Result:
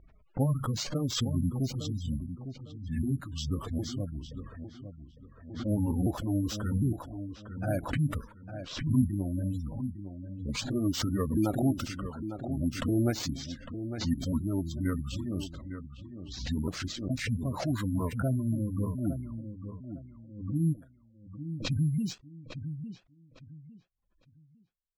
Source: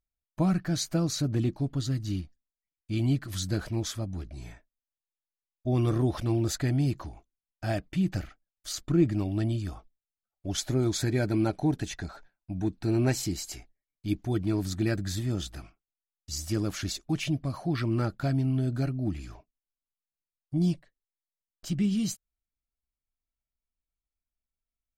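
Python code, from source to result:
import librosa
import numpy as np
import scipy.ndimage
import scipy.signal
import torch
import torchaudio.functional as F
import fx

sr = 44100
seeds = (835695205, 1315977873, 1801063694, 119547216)

y = fx.pitch_ramps(x, sr, semitones=-6.0, every_ms=758)
y = fx.echo_feedback(y, sr, ms=855, feedback_pct=27, wet_db=-10.0)
y = fx.spec_gate(y, sr, threshold_db=-25, keep='strong')
y = fx.peak_eq(y, sr, hz=3100.0, db=-3.0, octaves=2.5)
y = np.repeat(y[::4], 4)[:len(y)]
y = fx.env_lowpass(y, sr, base_hz=1600.0, full_db=-26.0)
y = fx.low_shelf(y, sr, hz=66.0, db=-8.0)
y = fx.pre_swell(y, sr, db_per_s=82.0)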